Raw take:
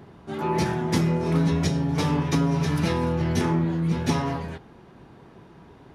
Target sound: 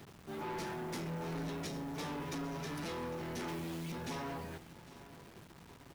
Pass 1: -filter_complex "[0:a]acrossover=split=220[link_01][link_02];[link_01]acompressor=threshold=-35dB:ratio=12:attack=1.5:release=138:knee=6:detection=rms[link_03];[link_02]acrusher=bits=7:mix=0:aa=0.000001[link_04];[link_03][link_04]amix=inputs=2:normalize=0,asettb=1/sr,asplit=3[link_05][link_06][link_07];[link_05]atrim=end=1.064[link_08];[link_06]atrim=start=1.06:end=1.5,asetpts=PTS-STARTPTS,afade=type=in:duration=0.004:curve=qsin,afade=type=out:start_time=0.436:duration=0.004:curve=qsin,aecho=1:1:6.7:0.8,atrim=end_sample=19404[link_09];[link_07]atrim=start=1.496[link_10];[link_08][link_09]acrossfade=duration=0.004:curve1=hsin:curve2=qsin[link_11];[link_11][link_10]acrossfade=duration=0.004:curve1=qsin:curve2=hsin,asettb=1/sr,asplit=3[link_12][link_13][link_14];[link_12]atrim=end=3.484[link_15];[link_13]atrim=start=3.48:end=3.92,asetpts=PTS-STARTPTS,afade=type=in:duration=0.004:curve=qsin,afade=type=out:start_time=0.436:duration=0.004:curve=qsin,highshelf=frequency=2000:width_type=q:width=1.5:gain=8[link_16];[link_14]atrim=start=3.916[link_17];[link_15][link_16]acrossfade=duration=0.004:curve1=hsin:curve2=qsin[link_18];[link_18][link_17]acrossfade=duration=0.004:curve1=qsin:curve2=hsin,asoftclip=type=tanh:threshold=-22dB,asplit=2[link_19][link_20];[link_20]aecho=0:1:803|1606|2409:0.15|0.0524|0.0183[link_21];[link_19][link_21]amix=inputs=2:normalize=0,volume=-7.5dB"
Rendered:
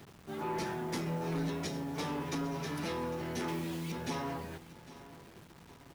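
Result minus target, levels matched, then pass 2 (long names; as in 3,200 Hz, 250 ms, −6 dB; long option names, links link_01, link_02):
soft clipping: distortion −7 dB
-filter_complex "[0:a]acrossover=split=220[link_01][link_02];[link_01]acompressor=threshold=-35dB:ratio=12:attack=1.5:release=138:knee=6:detection=rms[link_03];[link_02]acrusher=bits=7:mix=0:aa=0.000001[link_04];[link_03][link_04]amix=inputs=2:normalize=0,asettb=1/sr,asplit=3[link_05][link_06][link_07];[link_05]atrim=end=1.064[link_08];[link_06]atrim=start=1.06:end=1.5,asetpts=PTS-STARTPTS,afade=type=in:duration=0.004:curve=qsin,afade=type=out:start_time=0.436:duration=0.004:curve=qsin,aecho=1:1:6.7:0.8,atrim=end_sample=19404[link_09];[link_07]atrim=start=1.496[link_10];[link_08][link_09]acrossfade=duration=0.004:curve1=hsin:curve2=qsin[link_11];[link_11][link_10]acrossfade=duration=0.004:curve1=qsin:curve2=hsin,asettb=1/sr,asplit=3[link_12][link_13][link_14];[link_12]atrim=end=3.484[link_15];[link_13]atrim=start=3.48:end=3.92,asetpts=PTS-STARTPTS,afade=type=in:duration=0.004:curve=qsin,afade=type=out:start_time=0.436:duration=0.004:curve=qsin,highshelf=frequency=2000:width_type=q:width=1.5:gain=8[link_16];[link_14]atrim=start=3.916[link_17];[link_15][link_16]acrossfade=duration=0.004:curve1=hsin:curve2=qsin[link_18];[link_18][link_17]acrossfade=duration=0.004:curve1=qsin:curve2=hsin,asoftclip=type=tanh:threshold=-30dB,asplit=2[link_19][link_20];[link_20]aecho=0:1:803|1606|2409:0.15|0.0524|0.0183[link_21];[link_19][link_21]amix=inputs=2:normalize=0,volume=-7.5dB"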